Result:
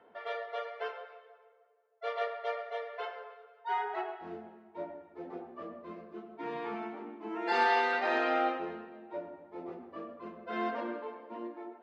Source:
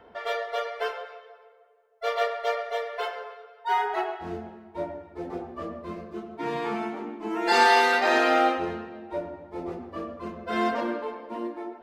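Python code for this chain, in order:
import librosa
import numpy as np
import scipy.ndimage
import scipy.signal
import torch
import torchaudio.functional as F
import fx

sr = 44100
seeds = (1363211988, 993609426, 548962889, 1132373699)

y = fx.bandpass_edges(x, sr, low_hz=190.0, high_hz=3300.0)
y = y * 10.0 ** (-8.0 / 20.0)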